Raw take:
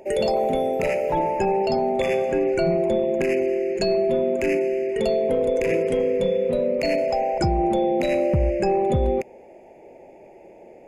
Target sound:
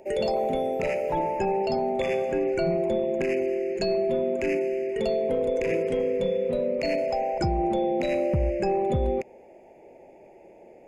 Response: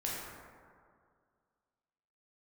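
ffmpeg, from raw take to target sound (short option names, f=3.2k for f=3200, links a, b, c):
-filter_complex "[0:a]acrossover=split=8100[a][b];[b]acompressor=threshold=-57dB:ratio=4:attack=1:release=60[c];[a][c]amix=inputs=2:normalize=0,volume=-4dB"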